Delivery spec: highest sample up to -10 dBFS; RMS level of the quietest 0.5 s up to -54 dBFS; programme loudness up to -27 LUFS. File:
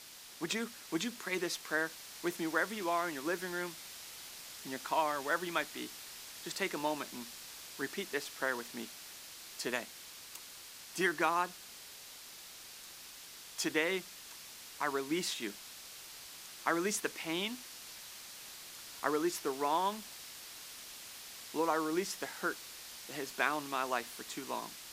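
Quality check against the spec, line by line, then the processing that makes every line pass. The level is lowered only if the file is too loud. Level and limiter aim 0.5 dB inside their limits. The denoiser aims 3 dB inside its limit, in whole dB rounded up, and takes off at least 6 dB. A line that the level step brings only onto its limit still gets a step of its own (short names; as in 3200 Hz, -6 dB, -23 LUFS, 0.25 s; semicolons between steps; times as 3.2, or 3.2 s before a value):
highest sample -14.5 dBFS: OK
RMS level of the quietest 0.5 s -51 dBFS: fail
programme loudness -37.5 LUFS: OK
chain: denoiser 6 dB, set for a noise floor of -51 dBFS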